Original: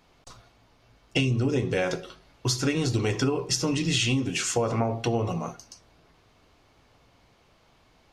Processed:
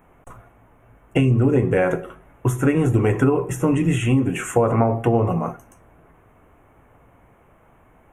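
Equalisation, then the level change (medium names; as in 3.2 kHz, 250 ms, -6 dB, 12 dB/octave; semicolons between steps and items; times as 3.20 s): Butterworth band-stop 4.6 kHz, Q 0.57; +8.0 dB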